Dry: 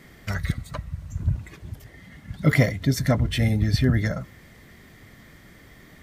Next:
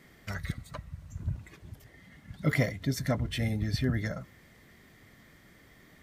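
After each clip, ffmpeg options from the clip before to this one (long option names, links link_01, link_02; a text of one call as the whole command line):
ffmpeg -i in.wav -af "lowshelf=frequency=120:gain=-4.5,volume=-7dB" out.wav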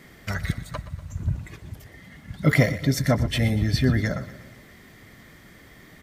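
ffmpeg -i in.wav -af "aecho=1:1:120|240|360|480|600|720:0.168|0.0957|0.0545|0.0311|0.0177|0.0101,volume=8dB" out.wav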